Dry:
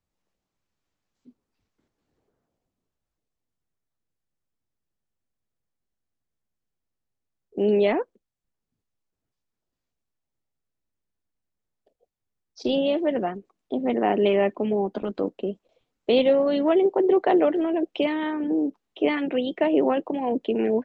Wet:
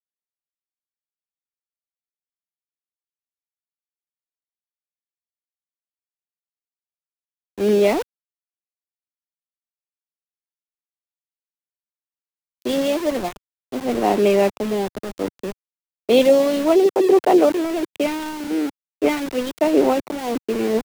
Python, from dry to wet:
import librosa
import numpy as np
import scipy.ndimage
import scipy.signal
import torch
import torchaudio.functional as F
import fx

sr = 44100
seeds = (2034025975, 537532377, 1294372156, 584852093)

y = scipy.signal.sosfilt(scipy.signal.butter(4, 53.0, 'highpass', fs=sr, output='sos'), x)
y = fx.peak_eq(y, sr, hz=1700.0, db=-11.5, octaves=0.2)
y = fx.notch(y, sr, hz=3000.0, q=10.0)
y = np.where(np.abs(y) >= 10.0 ** (-28.5 / 20.0), y, 0.0)
y = fx.band_widen(y, sr, depth_pct=70)
y = F.gain(torch.from_numpy(y), 4.0).numpy()